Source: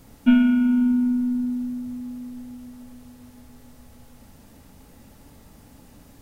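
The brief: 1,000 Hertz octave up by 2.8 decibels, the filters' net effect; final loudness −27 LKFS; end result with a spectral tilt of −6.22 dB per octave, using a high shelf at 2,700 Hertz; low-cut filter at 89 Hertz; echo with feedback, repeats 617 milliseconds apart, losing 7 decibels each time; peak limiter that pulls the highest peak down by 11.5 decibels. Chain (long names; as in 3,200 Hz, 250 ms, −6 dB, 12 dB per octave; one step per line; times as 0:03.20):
high-pass filter 89 Hz
parametric band 1,000 Hz +5 dB
high-shelf EQ 2,700 Hz −4 dB
brickwall limiter −18.5 dBFS
repeating echo 617 ms, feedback 45%, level −7 dB
level −0.5 dB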